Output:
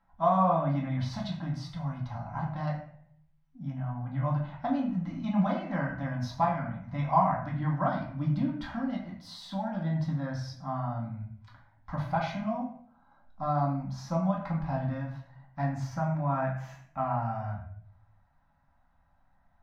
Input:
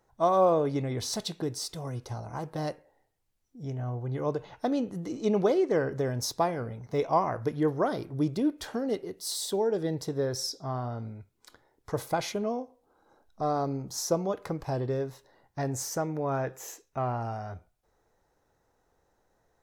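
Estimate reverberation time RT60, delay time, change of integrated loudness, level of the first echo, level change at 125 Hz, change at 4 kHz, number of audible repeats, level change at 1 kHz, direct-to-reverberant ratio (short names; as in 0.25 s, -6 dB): 0.60 s, none, -1.0 dB, none, +4.0 dB, -9.5 dB, none, +2.0 dB, -3.0 dB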